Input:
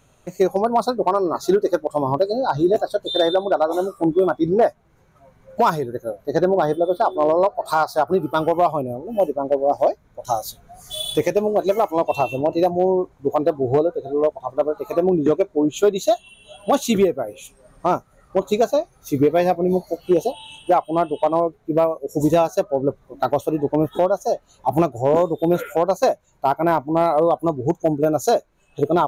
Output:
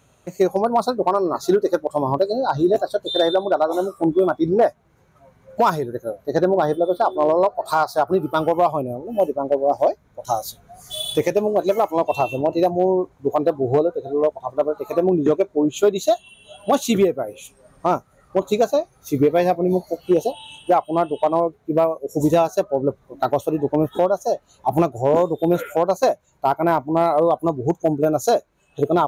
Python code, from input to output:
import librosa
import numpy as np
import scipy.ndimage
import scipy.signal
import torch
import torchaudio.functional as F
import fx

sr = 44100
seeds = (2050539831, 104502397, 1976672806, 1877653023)

y = scipy.signal.sosfilt(scipy.signal.butter(2, 49.0, 'highpass', fs=sr, output='sos'), x)